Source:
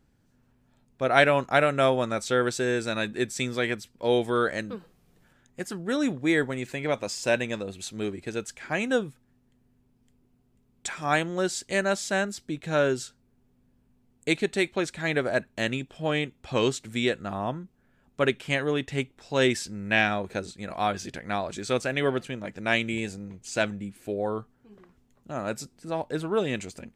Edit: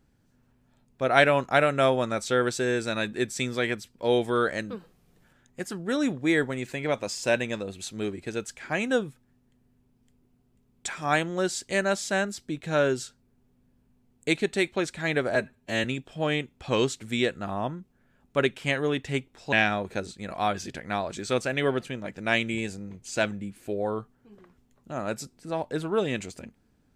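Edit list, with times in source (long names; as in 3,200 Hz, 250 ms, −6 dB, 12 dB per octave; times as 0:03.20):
0:15.35–0:15.68: time-stretch 1.5×
0:19.36–0:19.92: remove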